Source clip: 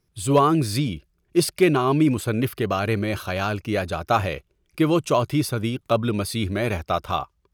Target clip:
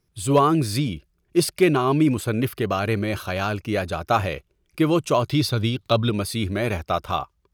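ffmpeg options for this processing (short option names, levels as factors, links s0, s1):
-filter_complex "[0:a]asettb=1/sr,asplit=3[s0][s1][s2];[s0]atrim=end=5.294[s3];[s1]atrim=start=5.29:end=6.1,asetpts=PTS-STARTPTS,afade=t=in:d=0.004:c=qsin,afade=t=out:st=0.806:d=0.004:c=qsin,equalizer=f=100:t=o:w=0.67:g=6,equalizer=f=4000:t=o:w=0.67:g=11,equalizer=f=10000:t=o:w=0.67:g=-4[s4];[s2]atrim=start=6.096[s5];[s3][s4]acrossfade=d=0.004:c1=hsin:c2=qsin[s6];[s6][s5]acrossfade=d=0.004:c1=qsin:c2=hsin"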